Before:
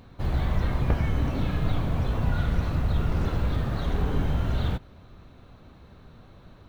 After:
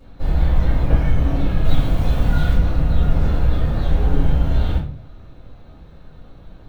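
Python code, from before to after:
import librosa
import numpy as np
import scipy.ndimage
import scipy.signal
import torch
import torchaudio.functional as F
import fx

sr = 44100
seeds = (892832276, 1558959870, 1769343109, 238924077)

y = fx.high_shelf(x, sr, hz=3100.0, db=9.5, at=(1.64, 2.54))
y = fx.room_shoebox(y, sr, seeds[0], volume_m3=38.0, walls='mixed', distance_m=2.3)
y = y * librosa.db_to_amplitude(-9.0)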